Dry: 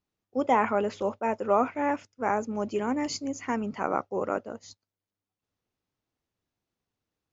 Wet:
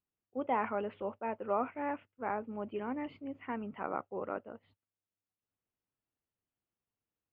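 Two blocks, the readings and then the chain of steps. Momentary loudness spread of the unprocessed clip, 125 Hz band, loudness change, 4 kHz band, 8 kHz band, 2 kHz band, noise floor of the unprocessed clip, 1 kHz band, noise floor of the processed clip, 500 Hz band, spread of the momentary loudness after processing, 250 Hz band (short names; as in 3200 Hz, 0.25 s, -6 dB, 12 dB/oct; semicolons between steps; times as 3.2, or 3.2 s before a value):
8 LU, -9.5 dB, -9.0 dB, -17.5 dB, n/a, -9.0 dB, under -85 dBFS, -8.5 dB, under -85 dBFS, -9.0 dB, 9 LU, -9.5 dB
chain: elliptic low-pass 3000 Hz, stop band 50 dB; gain -8.5 dB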